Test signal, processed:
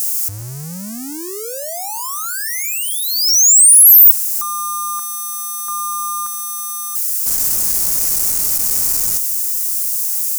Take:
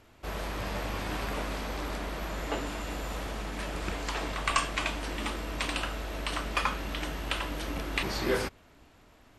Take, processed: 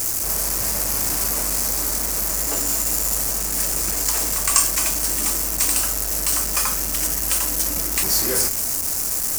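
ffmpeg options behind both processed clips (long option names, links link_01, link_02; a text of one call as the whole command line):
ffmpeg -i in.wav -af "aeval=exprs='val(0)+0.5*0.0316*sgn(val(0))':channel_layout=same,aexciter=amount=8.3:drive=7.8:freq=5200,volume=-1dB" out.wav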